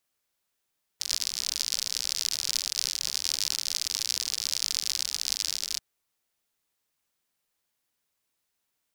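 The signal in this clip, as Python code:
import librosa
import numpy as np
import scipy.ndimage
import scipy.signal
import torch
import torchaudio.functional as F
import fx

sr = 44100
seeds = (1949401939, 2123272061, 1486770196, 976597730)

y = fx.rain(sr, seeds[0], length_s=4.79, drops_per_s=73.0, hz=5000.0, bed_db=-27)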